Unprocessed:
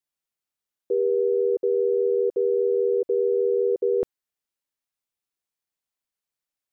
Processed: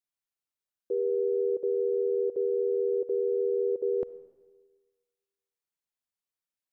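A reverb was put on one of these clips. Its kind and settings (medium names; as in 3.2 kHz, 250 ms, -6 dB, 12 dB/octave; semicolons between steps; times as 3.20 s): algorithmic reverb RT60 1.4 s, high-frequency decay 1×, pre-delay 15 ms, DRR 17 dB; trim -6 dB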